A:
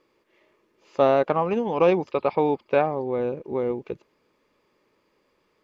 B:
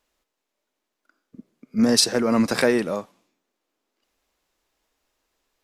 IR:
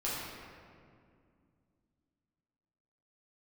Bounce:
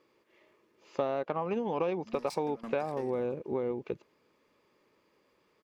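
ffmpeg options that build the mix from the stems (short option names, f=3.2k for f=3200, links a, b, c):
-filter_complex "[0:a]highpass=60,volume=-2dB[a];[1:a]asoftclip=type=tanh:threshold=-18dB,aeval=exprs='val(0)*pow(10,-18*if(lt(mod(6*n/s,1),2*abs(6)/1000),1-mod(6*n/s,1)/(2*abs(6)/1000),(mod(6*n/s,1)-2*abs(6)/1000)/(1-2*abs(6)/1000))/20)':c=same,adelay=300,volume=-12.5dB[b];[a][b]amix=inputs=2:normalize=0,acompressor=threshold=-28dB:ratio=6"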